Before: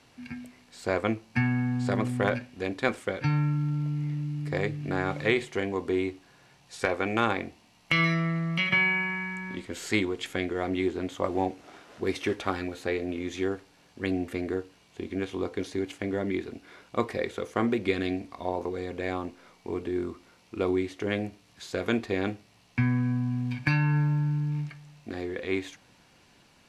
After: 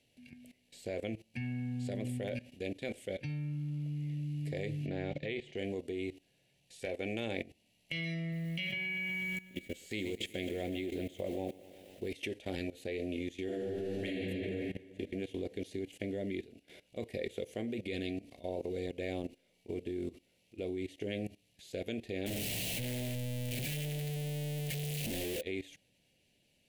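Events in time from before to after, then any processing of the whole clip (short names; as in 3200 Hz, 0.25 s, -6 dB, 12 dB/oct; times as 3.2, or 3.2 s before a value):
4.86–5.57 LPF 4200 Hz
8.2–12.13 lo-fi delay 0.123 s, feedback 80%, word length 8-bit, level -14 dB
13.44–14.12 reverb throw, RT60 2.7 s, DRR -11 dB
22.26–25.41 infinite clipping
whole clip: EQ curve 190 Hz 0 dB, 340 Hz -2 dB, 600 Hz +2 dB, 1200 Hz -27 dB, 1900 Hz -4 dB, 2900 Hz +4 dB, 5300 Hz -3 dB, 11000 Hz +6 dB; level quantiser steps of 18 dB; gain -1 dB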